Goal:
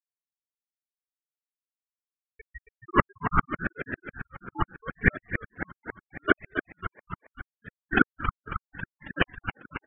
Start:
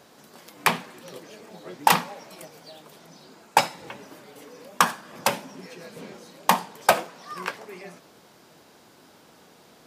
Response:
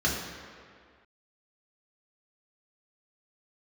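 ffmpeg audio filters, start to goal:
-filter_complex "[0:a]areverse,afftfilt=real='re*gte(hypot(re,im),0.251)':imag='im*gte(hypot(re,im),0.251)':win_size=1024:overlap=0.75,asplit=9[s0][s1][s2][s3][s4][s5][s6][s7][s8];[s1]adelay=273,afreqshift=45,volume=0.355[s9];[s2]adelay=546,afreqshift=90,volume=0.219[s10];[s3]adelay=819,afreqshift=135,volume=0.136[s11];[s4]adelay=1092,afreqshift=180,volume=0.0841[s12];[s5]adelay=1365,afreqshift=225,volume=0.0525[s13];[s6]adelay=1638,afreqshift=270,volume=0.0324[s14];[s7]adelay=1911,afreqshift=315,volume=0.0202[s15];[s8]adelay=2184,afreqshift=360,volume=0.0124[s16];[s0][s9][s10][s11][s12][s13][s14][s15][s16]amix=inputs=9:normalize=0,asplit=2[s17][s18];[s18]asoftclip=type=hard:threshold=0.299,volume=0.473[s19];[s17][s19]amix=inputs=2:normalize=0,highpass=f=510:t=q:w=0.5412,highpass=f=510:t=q:w=1.307,lowpass=f=2300:t=q:w=0.5176,lowpass=f=2300:t=q:w=0.7071,lowpass=f=2300:t=q:w=1.932,afreqshift=-290,aeval=exprs='val(0)*sin(2*PI*780*n/s+780*0.25/0.77*sin(2*PI*0.77*n/s))':c=same,volume=0.891"

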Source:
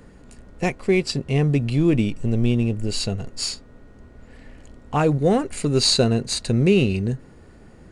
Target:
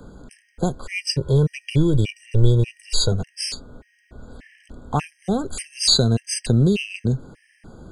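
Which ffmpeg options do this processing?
-filter_complex "[0:a]asettb=1/sr,asplit=3[s0][s1][s2];[s0]atrim=end=0.854[s3];[s1]atrim=start=0.85:end=3.12,asetpts=PTS-STARTPTS,afade=t=in:d=0.004:c=qsin,afade=t=out:st=2.266:d=0.004:c=qsin,aecho=1:1:2.1:0.78,atrim=end_sample=100107[s4];[s2]atrim=start=3.116[s5];[s3][s4]acrossfade=d=0.004:c1=hsin:c2=qsin[s6];[s6][s5]acrossfade=d=0.004:c1=qsin:c2=hsin,acrossover=split=170|3000[s7][s8][s9];[s8]acompressor=threshold=0.0562:ratio=6[s10];[s7][s10][s9]amix=inputs=3:normalize=0,afftfilt=real='re*gt(sin(2*PI*1.7*pts/sr)*(1-2*mod(floor(b*sr/1024/1600),2)),0)':imag='im*gt(sin(2*PI*1.7*pts/sr)*(1-2*mod(floor(b*sr/1024/1600),2)),0)':win_size=1024:overlap=0.75,volume=1.78"

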